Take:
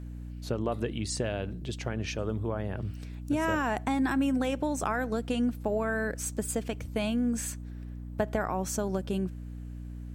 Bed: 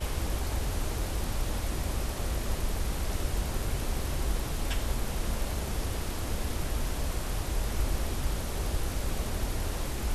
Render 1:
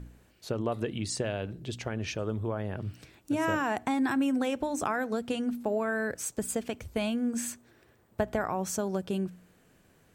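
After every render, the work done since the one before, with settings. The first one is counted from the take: de-hum 60 Hz, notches 5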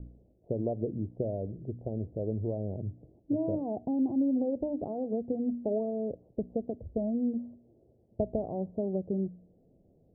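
steep low-pass 680 Hz 48 dB/octave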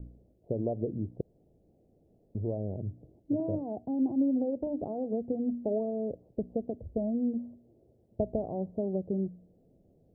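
1.21–2.35 s: room tone; 3.40–4.67 s: three bands expanded up and down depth 70%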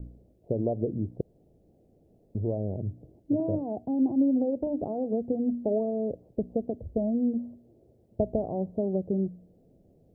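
trim +3.5 dB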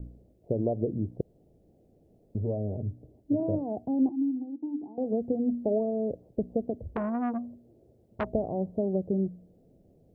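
2.41–3.43 s: comb of notches 170 Hz; 4.09–4.98 s: vowel filter u; 6.94–8.29 s: transformer saturation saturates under 1.1 kHz

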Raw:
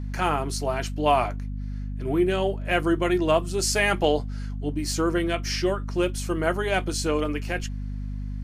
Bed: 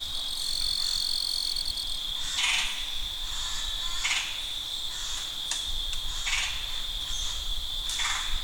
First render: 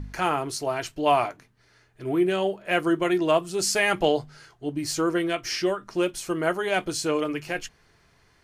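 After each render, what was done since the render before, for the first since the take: de-hum 50 Hz, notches 5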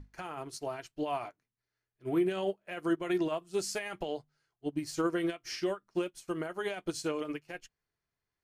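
peak limiter -20 dBFS, peak gain reduction 11 dB; upward expansion 2.5:1, over -43 dBFS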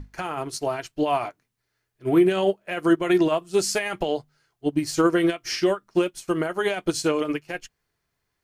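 trim +11 dB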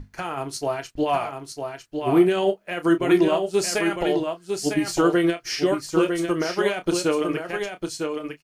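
doubling 29 ms -10.5 dB; on a send: delay 953 ms -5.5 dB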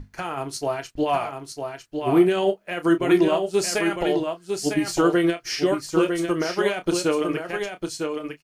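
no audible change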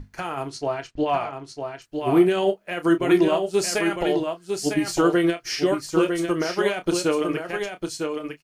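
0.49–1.82 s: distance through air 79 m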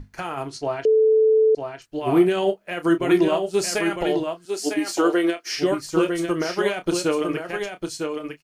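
0.85–1.55 s: bleep 438 Hz -13 dBFS; 4.45–5.55 s: high-pass 250 Hz 24 dB/octave

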